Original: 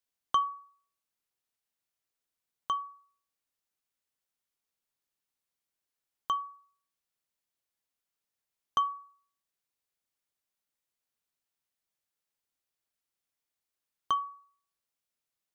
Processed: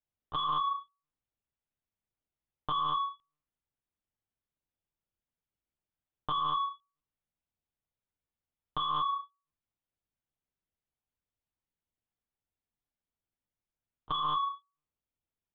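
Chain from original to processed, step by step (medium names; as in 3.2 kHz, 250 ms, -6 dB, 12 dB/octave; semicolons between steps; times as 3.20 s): waveshaping leveller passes 5; gated-style reverb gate 250 ms flat, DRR 9 dB; monotone LPC vocoder at 8 kHz 150 Hz; peak limiter -29.5 dBFS, peak gain reduction 21.5 dB; tilt shelf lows +6.5 dB, about 810 Hz; trim +7 dB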